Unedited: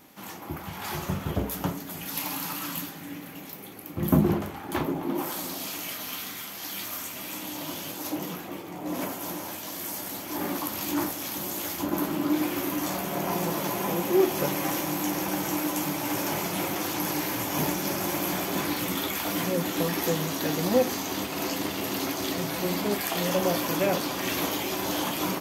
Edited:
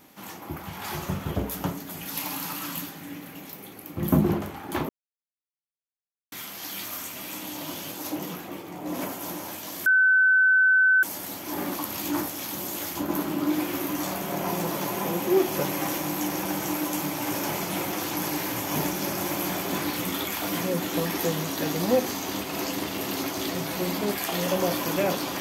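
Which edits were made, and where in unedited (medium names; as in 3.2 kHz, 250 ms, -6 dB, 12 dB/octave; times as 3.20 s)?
4.89–6.32 s: mute
9.86 s: add tone 1.52 kHz -15.5 dBFS 1.17 s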